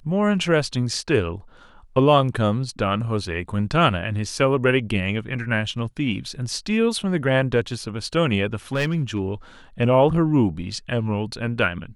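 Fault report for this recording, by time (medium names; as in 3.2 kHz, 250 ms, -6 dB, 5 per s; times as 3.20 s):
8.73–9.20 s: clipped -17 dBFS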